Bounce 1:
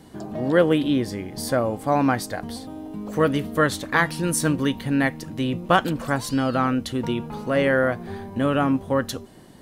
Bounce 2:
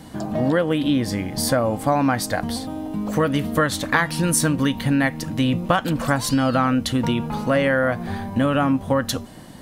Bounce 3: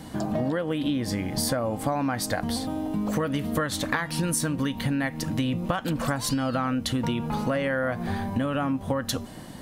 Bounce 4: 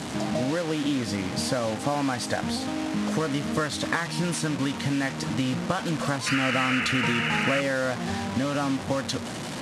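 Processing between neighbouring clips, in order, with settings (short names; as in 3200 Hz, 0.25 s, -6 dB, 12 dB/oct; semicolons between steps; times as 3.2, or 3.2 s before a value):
compressor 6:1, threshold -22 dBFS, peak gain reduction 10.5 dB; bell 390 Hz -10.5 dB 0.29 oct; gain +7.5 dB
compressor, threshold -23 dBFS, peak gain reduction 10 dB
delta modulation 64 kbps, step -27 dBFS; BPF 100–8000 Hz; painted sound noise, 6.26–7.61, 1200–3000 Hz -28 dBFS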